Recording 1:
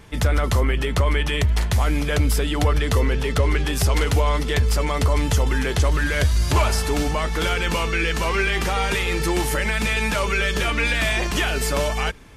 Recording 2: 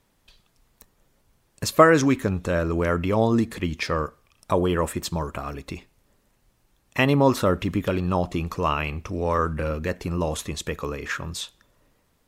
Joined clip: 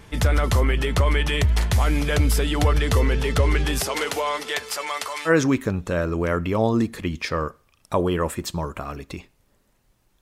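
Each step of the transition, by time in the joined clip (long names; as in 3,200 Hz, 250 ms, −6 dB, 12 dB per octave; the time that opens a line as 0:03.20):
recording 1
0:03.79–0:05.31: high-pass filter 280 Hz → 1,200 Hz
0:05.28: continue with recording 2 from 0:01.86, crossfade 0.06 s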